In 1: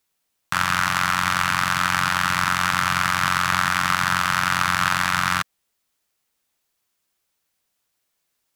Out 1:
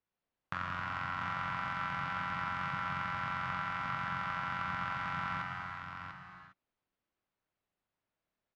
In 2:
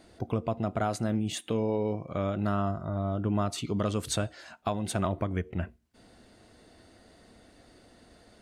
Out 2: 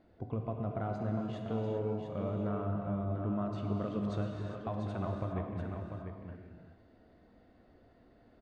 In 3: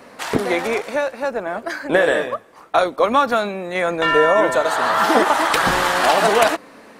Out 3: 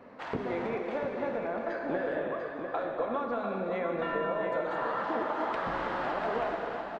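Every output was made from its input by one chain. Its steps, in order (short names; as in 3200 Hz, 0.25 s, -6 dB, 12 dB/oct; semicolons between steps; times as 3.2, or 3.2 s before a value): compressor, threshold -22 dBFS; tape spacing loss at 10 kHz 37 dB; echo 0.694 s -7 dB; non-linear reverb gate 0.43 s flat, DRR 1.5 dB; gain -6.5 dB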